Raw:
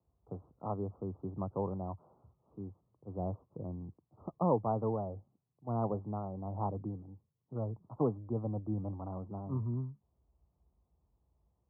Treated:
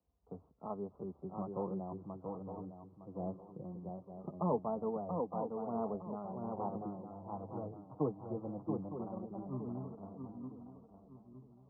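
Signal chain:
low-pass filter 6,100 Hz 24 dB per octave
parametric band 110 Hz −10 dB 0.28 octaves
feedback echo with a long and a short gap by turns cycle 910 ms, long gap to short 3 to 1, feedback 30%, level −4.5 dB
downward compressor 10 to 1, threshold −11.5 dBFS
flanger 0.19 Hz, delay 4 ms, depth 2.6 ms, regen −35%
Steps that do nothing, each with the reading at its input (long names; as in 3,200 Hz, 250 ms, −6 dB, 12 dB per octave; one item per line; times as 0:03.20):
low-pass filter 6,100 Hz: nothing at its input above 1,300 Hz
downward compressor, threshold −11.5 dBFS: peak of its input −18.5 dBFS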